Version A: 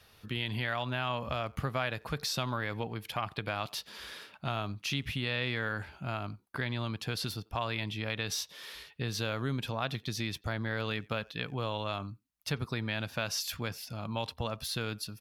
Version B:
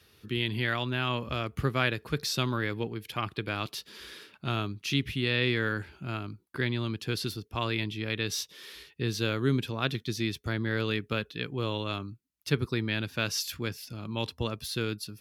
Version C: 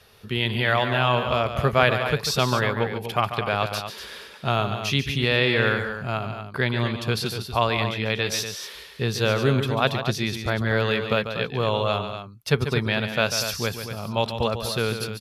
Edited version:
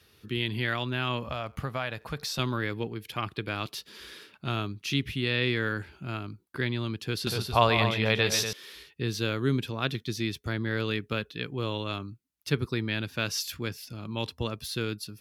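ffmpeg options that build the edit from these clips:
-filter_complex "[1:a]asplit=3[a][b][c];[a]atrim=end=1.242[d];[0:a]atrim=start=1.238:end=2.392[e];[b]atrim=start=2.388:end=7.272[f];[2:a]atrim=start=7.268:end=8.532[g];[c]atrim=start=8.528[h];[d][e]acrossfade=d=0.004:c1=hsin:c2=hsin[i];[i][f]acrossfade=d=0.004:c1=hsin:c2=hsin[j];[j][g]acrossfade=d=0.004:c1=hsin:c2=hsin[k];[k][h]acrossfade=d=0.004:c1=hsin:c2=hsin"

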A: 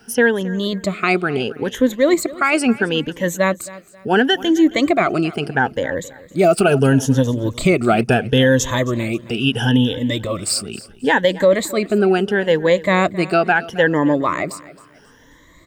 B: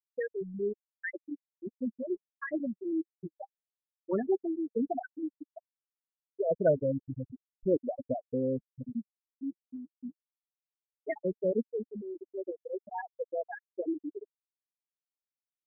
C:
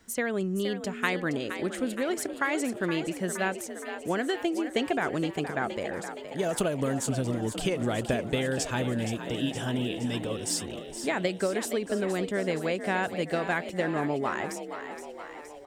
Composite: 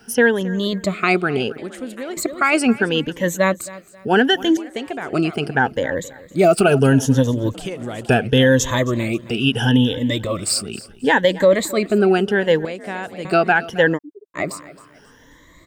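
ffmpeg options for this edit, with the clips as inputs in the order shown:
-filter_complex "[2:a]asplit=4[a][b][c][d];[0:a]asplit=6[e][f][g][h][i][j];[e]atrim=end=1.582[k];[a]atrim=start=1.578:end=2.172[l];[f]atrim=start=2.168:end=4.572[m];[b]atrim=start=4.568:end=5.132[n];[g]atrim=start=5.128:end=7.542[o];[c]atrim=start=7.538:end=8.092[p];[h]atrim=start=8.088:end=12.652[q];[d]atrim=start=12.648:end=13.252[r];[i]atrim=start=13.248:end=13.99[s];[1:a]atrim=start=13.93:end=14.4[t];[j]atrim=start=14.34[u];[k][l]acrossfade=d=0.004:c1=hsin:c2=hsin[v];[v][m]acrossfade=d=0.004:c1=hsin:c2=hsin[w];[w][n]acrossfade=d=0.004:c1=hsin:c2=hsin[x];[x][o]acrossfade=d=0.004:c1=hsin:c2=hsin[y];[y][p]acrossfade=d=0.004:c1=hsin:c2=hsin[z];[z][q]acrossfade=d=0.004:c1=hsin:c2=hsin[aa];[aa][r]acrossfade=d=0.004:c1=hsin:c2=hsin[ab];[ab][s]acrossfade=d=0.004:c1=hsin:c2=hsin[ac];[ac][t]acrossfade=d=0.06:c1=tri:c2=tri[ad];[ad][u]acrossfade=d=0.06:c1=tri:c2=tri"

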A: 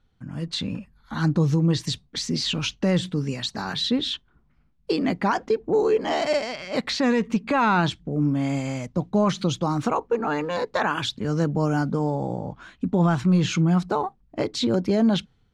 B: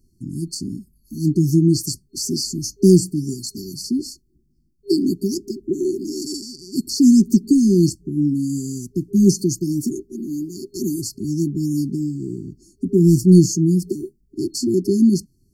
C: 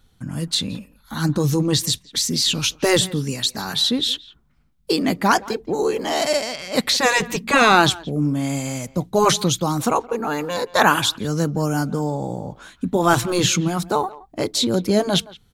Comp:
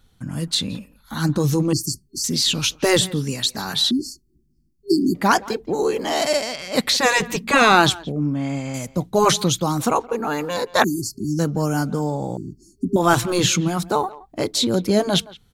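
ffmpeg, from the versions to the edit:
-filter_complex "[1:a]asplit=4[a][b][c][d];[2:a]asplit=6[e][f][g][h][i][j];[e]atrim=end=1.732[k];[a]atrim=start=1.728:end=2.242[l];[f]atrim=start=2.238:end=3.912[m];[b]atrim=start=3.908:end=5.152[n];[g]atrim=start=5.148:end=8.122[o];[0:a]atrim=start=8.118:end=8.742[p];[h]atrim=start=8.738:end=10.842[q];[c]atrim=start=10.838:end=11.392[r];[i]atrim=start=11.388:end=12.372[s];[d]atrim=start=12.368:end=12.962[t];[j]atrim=start=12.958[u];[k][l]acrossfade=d=0.004:c1=hsin:c2=hsin[v];[v][m]acrossfade=d=0.004:c1=hsin:c2=hsin[w];[w][n]acrossfade=d=0.004:c1=hsin:c2=hsin[x];[x][o]acrossfade=d=0.004:c1=hsin:c2=hsin[y];[y][p]acrossfade=d=0.004:c1=hsin:c2=hsin[z];[z][q]acrossfade=d=0.004:c1=hsin:c2=hsin[aa];[aa][r]acrossfade=d=0.004:c1=hsin:c2=hsin[ab];[ab][s]acrossfade=d=0.004:c1=hsin:c2=hsin[ac];[ac][t]acrossfade=d=0.004:c1=hsin:c2=hsin[ad];[ad][u]acrossfade=d=0.004:c1=hsin:c2=hsin"

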